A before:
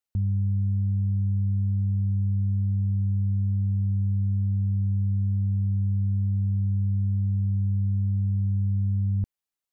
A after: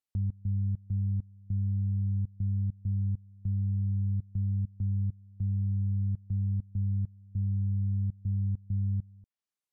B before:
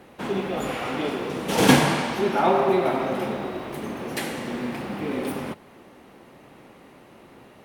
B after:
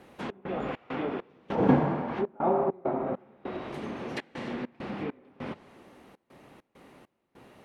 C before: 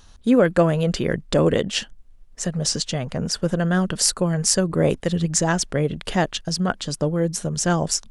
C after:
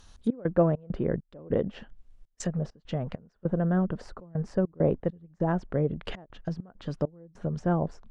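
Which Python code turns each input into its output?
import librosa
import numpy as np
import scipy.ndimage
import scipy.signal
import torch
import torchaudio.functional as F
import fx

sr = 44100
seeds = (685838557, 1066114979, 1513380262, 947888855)

y = fx.env_lowpass_down(x, sr, base_hz=940.0, full_db=-20.5)
y = fx.step_gate(y, sr, bpm=100, pattern='xx.xx.xx..xxx', floor_db=-24.0, edge_ms=4.5)
y = y * librosa.db_to_amplitude(-4.5)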